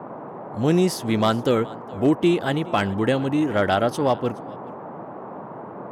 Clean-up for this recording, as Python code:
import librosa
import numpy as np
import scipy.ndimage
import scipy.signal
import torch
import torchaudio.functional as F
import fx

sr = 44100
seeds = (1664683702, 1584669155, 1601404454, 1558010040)

y = fx.fix_declip(x, sr, threshold_db=-10.0)
y = fx.noise_reduce(y, sr, print_start_s=5.25, print_end_s=5.75, reduce_db=30.0)
y = fx.fix_echo_inverse(y, sr, delay_ms=422, level_db=-21.5)